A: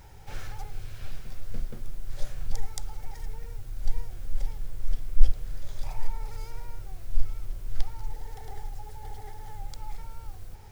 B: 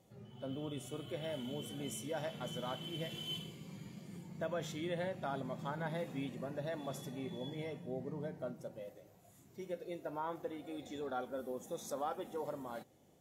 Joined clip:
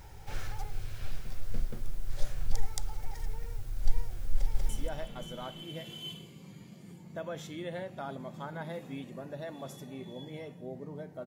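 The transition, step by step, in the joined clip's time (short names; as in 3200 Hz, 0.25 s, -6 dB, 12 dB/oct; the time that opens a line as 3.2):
A
4.35–4.69 echo throw 0.19 s, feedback 40%, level -0.5 dB
4.69 switch to B from 1.94 s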